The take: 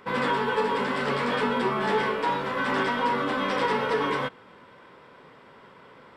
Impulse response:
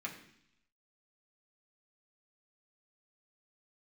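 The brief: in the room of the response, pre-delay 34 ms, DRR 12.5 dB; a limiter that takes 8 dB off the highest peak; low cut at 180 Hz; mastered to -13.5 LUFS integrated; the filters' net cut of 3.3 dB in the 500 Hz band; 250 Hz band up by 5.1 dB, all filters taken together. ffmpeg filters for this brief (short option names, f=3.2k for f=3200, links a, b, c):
-filter_complex "[0:a]highpass=180,equalizer=f=250:t=o:g=8.5,equalizer=f=500:t=o:g=-6.5,alimiter=limit=-21.5dB:level=0:latency=1,asplit=2[a][b];[1:a]atrim=start_sample=2205,adelay=34[c];[b][c]afir=irnorm=-1:irlink=0,volume=-13dB[d];[a][d]amix=inputs=2:normalize=0,volume=16dB"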